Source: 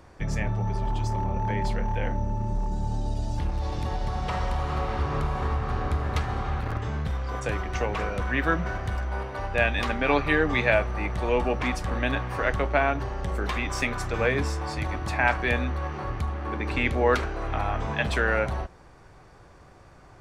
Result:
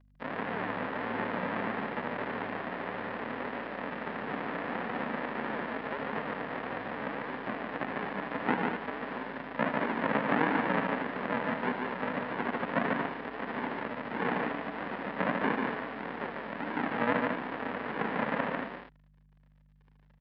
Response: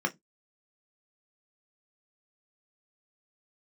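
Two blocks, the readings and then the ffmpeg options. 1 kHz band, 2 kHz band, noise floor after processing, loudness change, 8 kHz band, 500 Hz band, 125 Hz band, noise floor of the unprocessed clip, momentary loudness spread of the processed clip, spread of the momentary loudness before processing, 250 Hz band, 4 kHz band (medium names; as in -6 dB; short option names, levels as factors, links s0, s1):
-3.5 dB, -5.5 dB, -62 dBFS, -6.0 dB, under -35 dB, -6.0 dB, -16.5 dB, -51 dBFS, 7 LU, 7 LU, -2.0 dB, -8.5 dB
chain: -filter_complex "[0:a]aresample=11025,acrusher=samples=24:mix=1:aa=0.000001:lfo=1:lforange=14.4:lforate=1.6,aresample=44100,aeval=exprs='sgn(val(0))*max(abs(val(0))-0.00531,0)':c=same,highpass=f=240:w=0.5412,highpass=f=240:w=1.3066,equalizer=f=340:t=q:w=4:g=-9,equalizer=f=990:t=q:w=4:g=3,equalizer=f=1800:t=q:w=4:g=7,lowpass=f=3300:w=0.5412,lowpass=f=3300:w=1.3066,aeval=exprs='val(0)+0.000891*(sin(2*PI*50*n/s)+sin(2*PI*2*50*n/s)/2+sin(2*PI*3*50*n/s)/3+sin(2*PI*4*50*n/s)/4+sin(2*PI*5*50*n/s)/5)':c=same,aecho=1:1:44|73|146|227:0.126|0.251|0.668|0.335,acrossover=split=2600[s0][s1];[s1]acompressor=threshold=0.00141:ratio=4:attack=1:release=60[s2];[s0][s2]amix=inputs=2:normalize=0"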